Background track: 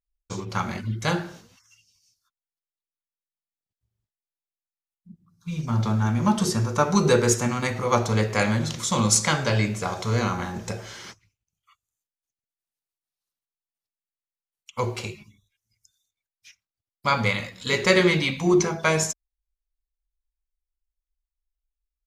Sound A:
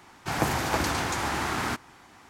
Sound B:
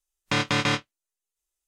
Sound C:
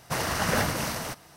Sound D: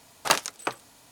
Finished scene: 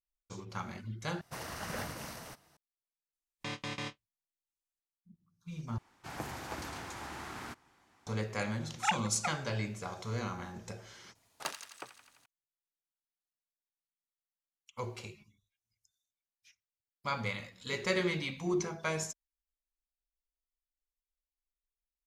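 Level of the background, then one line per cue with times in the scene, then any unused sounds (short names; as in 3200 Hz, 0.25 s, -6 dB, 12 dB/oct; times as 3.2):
background track -13 dB
1.21 replace with C -14 dB
3.13 add B -15.5 dB + notch 1400 Hz, Q 5.2
5.78 replace with A -15 dB
8.58 add D -8 dB + sine-wave speech
11.15 add D -17 dB + thin delay 86 ms, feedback 68%, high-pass 1500 Hz, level -8.5 dB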